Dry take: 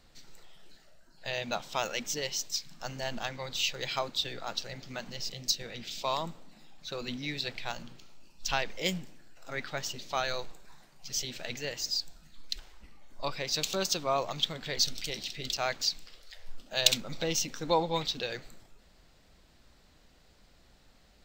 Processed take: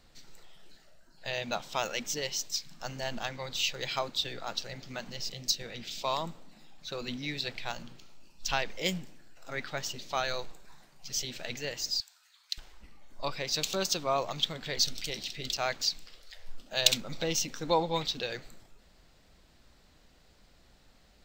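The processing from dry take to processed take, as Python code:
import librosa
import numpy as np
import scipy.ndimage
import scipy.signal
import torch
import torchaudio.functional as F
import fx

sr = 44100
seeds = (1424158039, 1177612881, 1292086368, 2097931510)

y = fx.highpass(x, sr, hz=1000.0, slope=24, at=(12.0, 12.58))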